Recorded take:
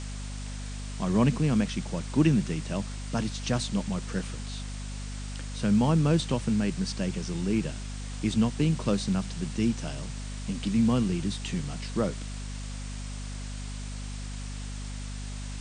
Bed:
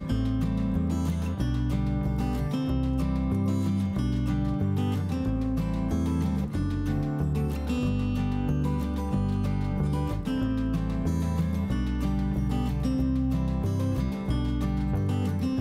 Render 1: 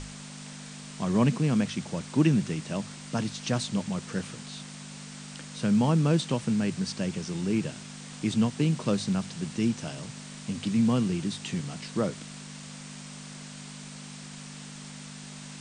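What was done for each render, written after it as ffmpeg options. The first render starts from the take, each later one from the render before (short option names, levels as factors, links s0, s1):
-af "bandreject=f=50:t=h:w=6,bandreject=f=100:t=h:w=6"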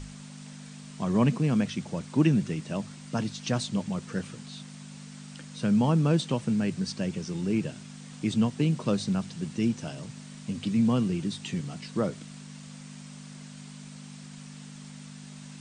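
-af "afftdn=nr=6:nf=-43"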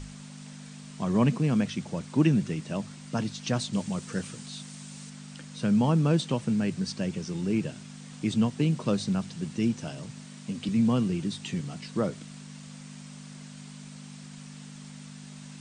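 -filter_complex "[0:a]asettb=1/sr,asplit=3[s0][s1][s2];[s0]atrim=end=3.734[s3];[s1]atrim=start=3.73:end=5.1,asetpts=PTS-STARTPTS,afade=t=in:d=0.004:c=qsin,afade=t=out:st=1.366:d=0.004:c=qsin,highshelf=f=5800:g=9.5[s4];[s2]atrim=start=5.096[s5];[s3][s4]acrossfade=d=0.004:c1=hsin:c2=qsin[s6];[s6][s5]acrossfade=d=0.004:c1=qsin:c2=hsin,asettb=1/sr,asplit=3[s7][s8][s9];[s7]atrim=end=10.254[s10];[s8]atrim=start=10.25:end=10.69,asetpts=PTS-STARTPTS,afade=t=in:d=0.004:c=qsin,afade=t=out:st=0.436:d=0.004:c=qsin,highpass=130[s11];[s9]atrim=start=10.686[s12];[s10][s11]acrossfade=d=0.004:c1=hsin:c2=qsin[s13];[s13][s12]acrossfade=d=0.004:c1=qsin:c2=hsin"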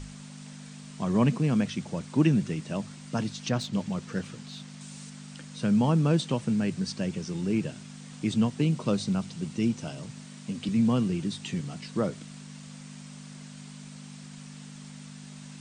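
-filter_complex "[0:a]asettb=1/sr,asplit=3[s0][s1][s2];[s0]atrim=end=3.494[s3];[s1]atrim=start=3.49:end=4.81,asetpts=PTS-STARTPTS,afade=t=in:d=0.004:c=qsin,afade=t=out:st=1.316:d=0.004:c=qsin,adynamicsmooth=sensitivity=3.5:basefreq=5900[s4];[s2]atrim=start=4.806[s5];[s3][s4]acrossfade=d=0.004:c1=hsin:c2=qsin[s6];[s6][s5]acrossfade=d=0.004:c1=qsin:c2=hsin,asettb=1/sr,asplit=3[s7][s8][s9];[s7]atrim=end=8.634[s10];[s8]atrim=start=8.63:end=10,asetpts=PTS-STARTPTS,afade=t=in:d=0.004:c=qsin,afade=t=out:st=1.366:d=0.004:c=qsin,bandreject=f=1700:w=12[s11];[s9]atrim=start=9.996[s12];[s10][s11]acrossfade=d=0.004:c1=hsin:c2=qsin[s13];[s13][s12]acrossfade=d=0.004:c1=qsin:c2=hsin"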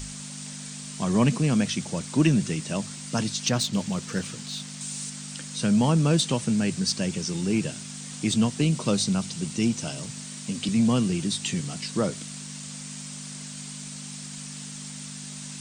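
-filter_complex "[0:a]crystalizer=i=3:c=0,asplit=2[s0][s1];[s1]asoftclip=type=tanh:threshold=0.0794,volume=0.398[s2];[s0][s2]amix=inputs=2:normalize=0"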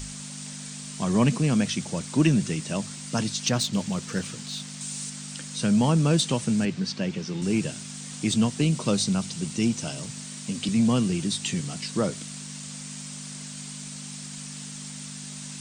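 -filter_complex "[0:a]asettb=1/sr,asplit=3[s0][s1][s2];[s0]atrim=end=6.654[s3];[s1]atrim=start=6.65:end=7.42,asetpts=PTS-STARTPTS,afade=t=in:d=0.004:c=qsin,afade=t=out:st=0.766:d=0.004:c=qsin,highpass=120,lowpass=3800[s4];[s2]atrim=start=7.416[s5];[s3][s4]acrossfade=d=0.004:c1=hsin:c2=qsin[s6];[s6][s5]acrossfade=d=0.004:c1=qsin:c2=hsin"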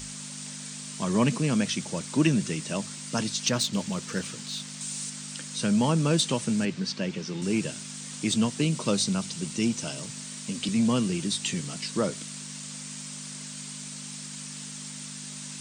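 -af "lowshelf=f=110:g=-11,bandreject=f=740:w=12"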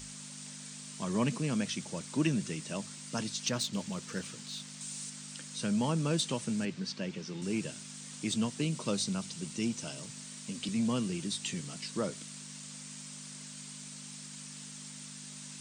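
-af "volume=0.447"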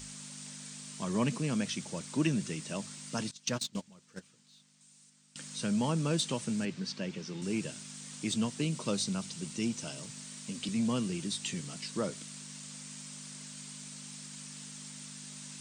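-filter_complex "[0:a]asettb=1/sr,asplit=3[s0][s1][s2];[s0]atrim=end=3.314[s3];[s1]atrim=start=3.31:end=5.36,asetpts=PTS-STARTPTS,afade=t=in:d=0.004:c=qsin,afade=t=out:st=2.046:d=0.004:c=qsin,agate=range=0.112:threshold=0.02:ratio=16:release=100:detection=peak[s4];[s2]atrim=start=5.356[s5];[s3][s4]acrossfade=d=0.004:c1=hsin:c2=qsin[s6];[s6][s5]acrossfade=d=0.004:c1=qsin:c2=hsin"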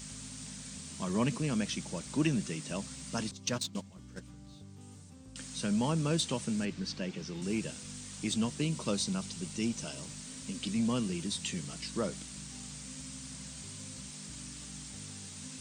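-filter_complex "[1:a]volume=0.0562[s0];[0:a][s0]amix=inputs=2:normalize=0"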